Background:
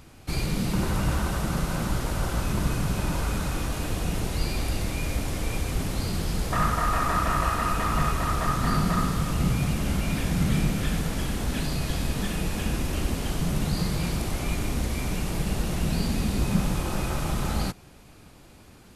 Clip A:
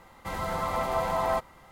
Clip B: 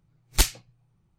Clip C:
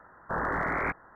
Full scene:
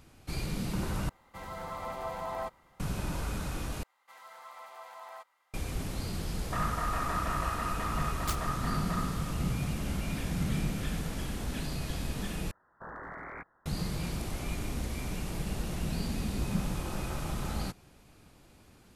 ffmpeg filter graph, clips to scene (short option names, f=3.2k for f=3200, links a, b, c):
-filter_complex "[1:a]asplit=2[a][b];[0:a]volume=-7.5dB[c];[b]highpass=940[d];[2:a]acrusher=bits=3:mix=0:aa=0.000001[e];[c]asplit=4[f][g][h][i];[f]atrim=end=1.094[j];[a]atrim=end=1.71,asetpts=PTS-STARTPTS,volume=-9.5dB[k];[g]atrim=start=2.796:end=3.834[l];[d]atrim=end=1.71,asetpts=PTS-STARTPTS,volume=-15.5dB[m];[h]atrim=start=5.536:end=12.514[n];[3:a]atrim=end=1.15,asetpts=PTS-STARTPTS,volume=-14dB[o];[i]atrim=start=13.656[p];[e]atrim=end=1.18,asetpts=PTS-STARTPTS,volume=-15.5dB,afade=t=in:d=0.004:c=hsin,afade=t=out:st=1.176:d=0.004:c=hsin,adelay=7890[q];[j][k]acrossfade=d=0.004:c1=hsin:c2=hsin[r];[r][l]acrossfade=d=0.004:c1=hsin:c2=hsin[s];[s][m]acrossfade=d=0.004:c1=hsin:c2=hsin[t];[t][n]acrossfade=d=0.004:c1=hsin:c2=hsin[u];[u][o]acrossfade=d=0.004:c1=hsin:c2=hsin[v];[v][p]acrossfade=d=0.004:c1=hsin:c2=hsin[w];[w][q]amix=inputs=2:normalize=0"